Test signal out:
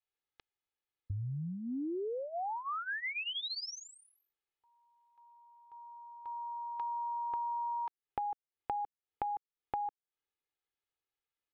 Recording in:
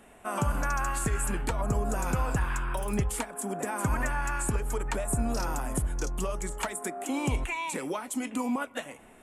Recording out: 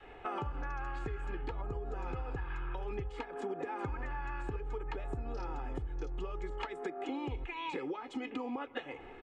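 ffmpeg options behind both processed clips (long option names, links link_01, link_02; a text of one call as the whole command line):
ffmpeg -i in.wav -af "lowpass=frequency=3900:width=0.5412,lowpass=frequency=3900:width=1.3066,aecho=1:1:2.4:0.77,adynamicequalizer=threshold=0.00891:dfrequency=280:dqfactor=0.76:tfrequency=280:tqfactor=0.76:attack=5:release=100:ratio=0.375:range=2:mode=boostabove:tftype=bell,acompressor=threshold=-37dB:ratio=10,volume=1.5dB" out.wav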